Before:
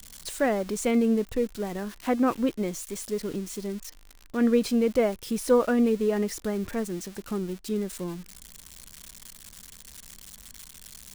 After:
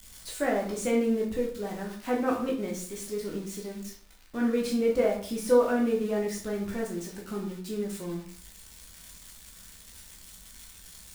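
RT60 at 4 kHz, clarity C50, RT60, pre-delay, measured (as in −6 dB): 0.40 s, 6.5 dB, 0.50 s, 10 ms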